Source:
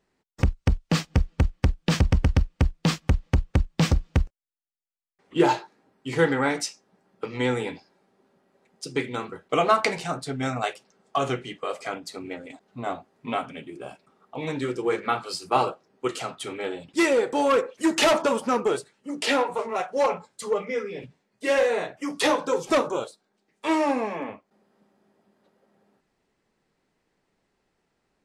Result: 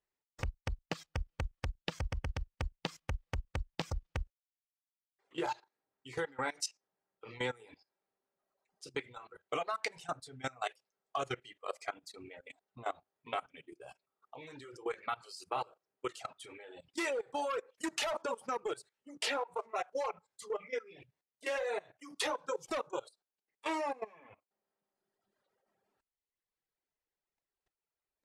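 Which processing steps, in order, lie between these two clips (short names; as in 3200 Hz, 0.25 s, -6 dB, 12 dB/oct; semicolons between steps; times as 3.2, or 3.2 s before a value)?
compressor 8:1, threshold -22 dBFS, peak gain reduction 9 dB; bell 210 Hz -12 dB 1.3 oct; level quantiser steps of 15 dB; reverb removal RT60 1.6 s; gain -3.5 dB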